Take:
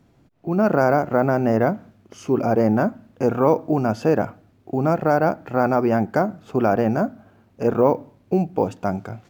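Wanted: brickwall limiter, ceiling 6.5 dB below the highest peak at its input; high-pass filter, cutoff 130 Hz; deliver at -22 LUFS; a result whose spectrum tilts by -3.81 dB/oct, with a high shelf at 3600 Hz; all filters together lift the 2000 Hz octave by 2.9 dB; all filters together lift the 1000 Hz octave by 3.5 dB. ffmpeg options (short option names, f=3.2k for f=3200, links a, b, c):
-af "highpass=130,equalizer=f=1k:t=o:g=5,equalizer=f=2k:t=o:g=3,highshelf=f=3.6k:g=-6.5,volume=0.5dB,alimiter=limit=-8dB:level=0:latency=1"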